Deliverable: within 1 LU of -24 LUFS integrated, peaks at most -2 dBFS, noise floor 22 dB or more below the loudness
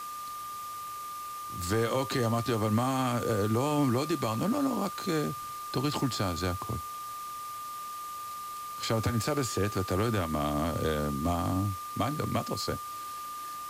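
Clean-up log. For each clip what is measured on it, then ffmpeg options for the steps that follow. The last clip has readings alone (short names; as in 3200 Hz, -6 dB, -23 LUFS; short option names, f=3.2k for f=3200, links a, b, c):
steady tone 1200 Hz; tone level -37 dBFS; noise floor -40 dBFS; noise floor target -54 dBFS; loudness -31.5 LUFS; peak -17.5 dBFS; loudness target -24.0 LUFS
-> -af "bandreject=f=1.2k:w=30"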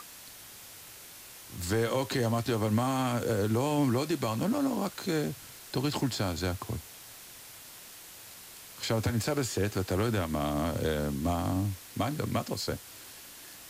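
steady tone none; noise floor -49 dBFS; noise floor target -53 dBFS
-> -af "afftdn=nr=6:nf=-49"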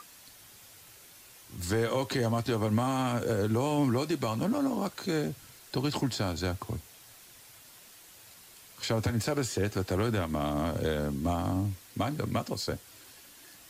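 noise floor -54 dBFS; loudness -31.0 LUFS; peak -18.0 dBFS; loudness target -24.0 LUFS
-> -af "volume=7dB"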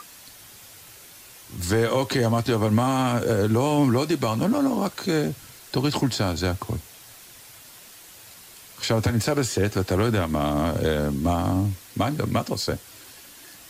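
loudness -24.0 LUFS; peak -11.0 dBFS; noise floor -47 dBFS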